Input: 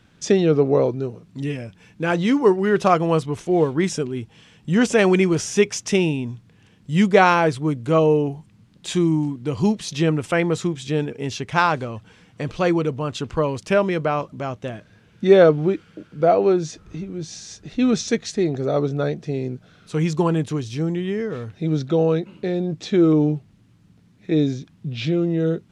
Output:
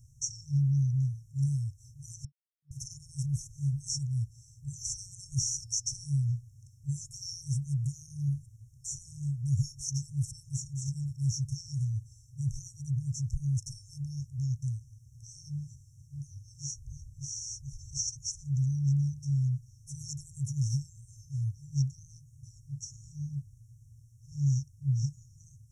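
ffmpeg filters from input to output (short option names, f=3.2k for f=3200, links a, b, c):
-filter_complex "[0:a]asplit=3[a][b][c];[a]atrim=end=2.25,asetpts=PTS-STARTPTS,afade=t=out:st=2.246:d=0.004:c=hsin[d];[b]atrim=start=2.25:end=2.71,asetpts=PTS-STARTPTS,volume=0[e];[c]atrim=start=2.71,asetpts=PTS-STARTPTS,afade=t=in:d=0.004:c=hsin[f];[d][e][f]concat=n=3:v=0:a=1,acrossover=split=6200[g][h];[h]acompressor=threshold=-49dB:ratio=4:attack=1:release=60[i];[g][i]amix=inputs=2:normalize=0,afftfilt=real='re*(1-between(b*sr/4096,140,5400))':imag='im*(1-between(b*sr/4096,140,5400))':win_size=4096:overlap=0.75,volume=3.5dB"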